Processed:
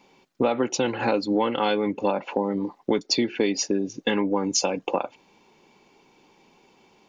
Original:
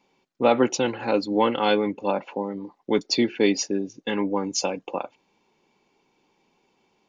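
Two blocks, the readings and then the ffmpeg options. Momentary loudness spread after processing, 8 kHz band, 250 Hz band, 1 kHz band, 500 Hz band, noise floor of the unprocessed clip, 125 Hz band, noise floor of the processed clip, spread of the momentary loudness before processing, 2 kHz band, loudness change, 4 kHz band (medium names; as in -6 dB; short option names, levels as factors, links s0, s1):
5 LU, +2.5 dB, -0.5 dB, -1.0 dB, -1.0 dB, -69 dBFS, +0.5 dB, -60 dBFS, 11 LU, -0.5 dB, -0.5 dB, +0.5 dB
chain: -af "acompressor=threshold=0.0355:ratio=6,volume=2.82"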